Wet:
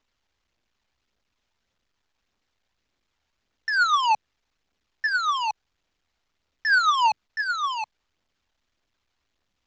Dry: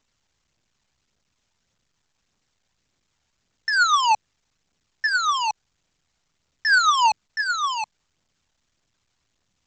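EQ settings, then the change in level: LPF 4500 Hz 12 dB/oct; bell 140 Hz -11 dB 0.75 oct; -2.0 dB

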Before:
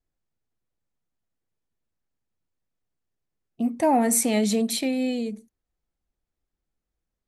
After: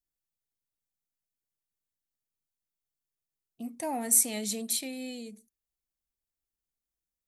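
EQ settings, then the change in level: pre-emphasis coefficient 0.8; 0.0 dB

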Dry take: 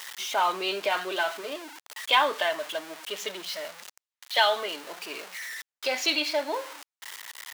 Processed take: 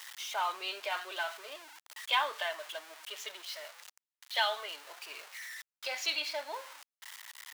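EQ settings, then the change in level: HPF 700 Hz 12 dB/oct; -7.0 dB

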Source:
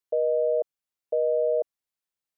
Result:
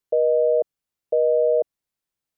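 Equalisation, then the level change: low shelf 400 Hz +7.5 dB; +2.5 dB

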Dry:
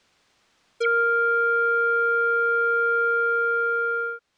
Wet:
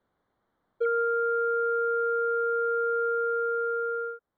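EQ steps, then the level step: dynamic EQ 710 Hz, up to +7 dB, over -37 dBFS, Q 0.84; running mean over 17 samples; air absorption 160 m; -5.0 dB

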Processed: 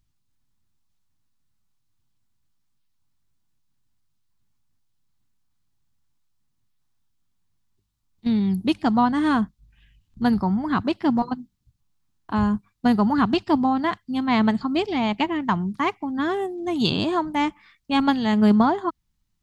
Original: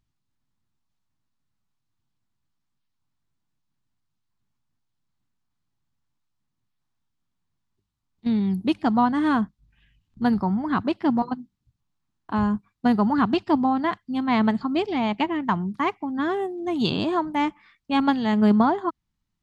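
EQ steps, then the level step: low shelf 89 Hz +8.5 dB; high shelf 3600 Hz +7.5 dB; 0.0 dB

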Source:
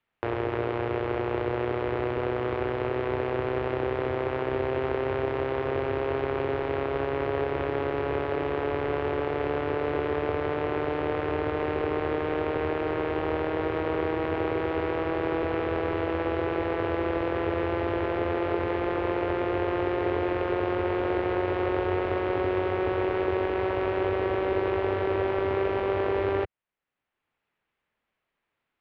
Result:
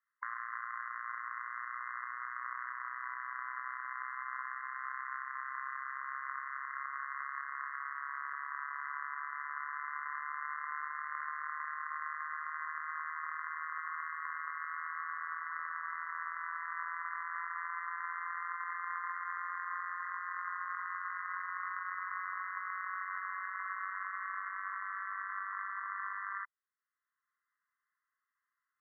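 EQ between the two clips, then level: brick-wall FIR band-pass 1000–2100 Hz; air absorption 360 m; +1.0 dB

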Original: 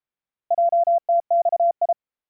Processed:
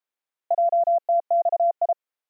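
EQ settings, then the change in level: HPF 400 Hz 12 dB/oct; dynamic EQ 720 Hz, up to -3 dB, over -27 dBFS, Q 2.6; +1.5 dB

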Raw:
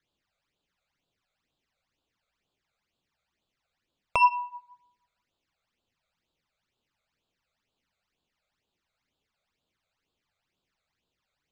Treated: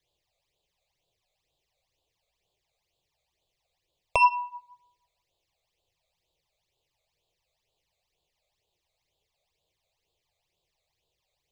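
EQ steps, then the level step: fixed phaser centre 590 Hz, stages 4; +5.5 dB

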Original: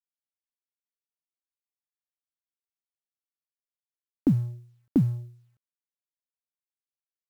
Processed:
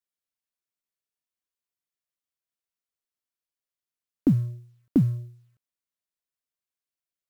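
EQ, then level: Butterworth band-stop 840 Hz, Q 7.4; +1.5 dB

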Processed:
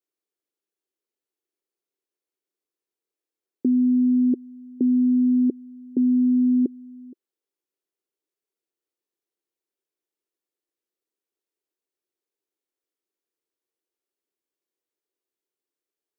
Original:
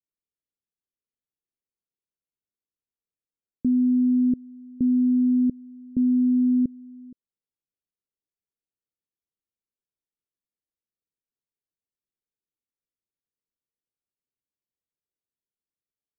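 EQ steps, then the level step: resonant high-pass 360 Hz, resonance Q 3.4; +2.5 dB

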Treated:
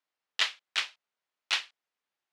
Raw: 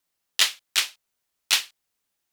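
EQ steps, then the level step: HPF 820 Hz 6 dB/oct; tape spacing loss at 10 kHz 25 dB; +1.5 dB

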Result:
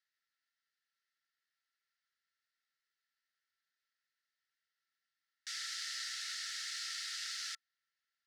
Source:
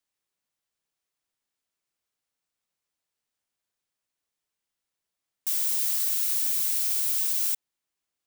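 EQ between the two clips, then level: rippled Chebyshev high-pass 1300 Hz, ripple 9 dB; tape spacing loss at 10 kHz 32 dB; notch 2400 Hz, Q 20; +15.0 dB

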